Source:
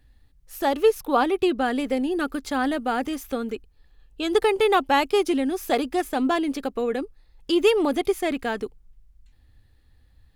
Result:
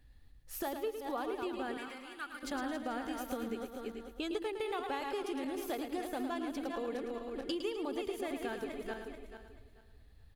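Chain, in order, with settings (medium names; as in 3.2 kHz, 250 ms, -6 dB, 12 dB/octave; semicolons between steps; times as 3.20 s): backward echo that repeats 218 ms, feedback 46%, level -7.5 dB; compression 6:1, threshold -32 dBFS, peak gain reduction 19 dB; 1.77–2.43 s: resonant low shelf 750 Hz -13.5 dB, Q 1.5; feedback delay 109 ms, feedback 32%, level -8 dB; trim -4 dB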